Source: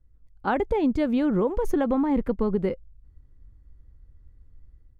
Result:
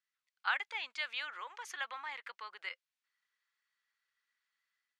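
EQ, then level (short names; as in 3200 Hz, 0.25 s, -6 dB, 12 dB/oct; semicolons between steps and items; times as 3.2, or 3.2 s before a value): Bessel high-pass 2500 Hz, order 4; air absorption 78 m; high shelf 5400 Hz -5.5 dB; +10.0 dB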